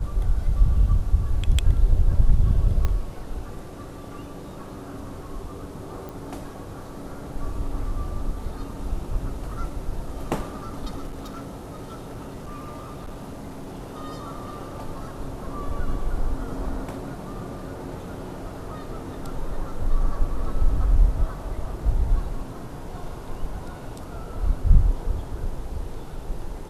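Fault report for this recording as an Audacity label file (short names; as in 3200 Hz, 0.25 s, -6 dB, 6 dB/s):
2.850000	2.850000	pop -12 dBFS
6.090000	6.090000	pop
11.070000	13.850000	clipped -30.5 dBFS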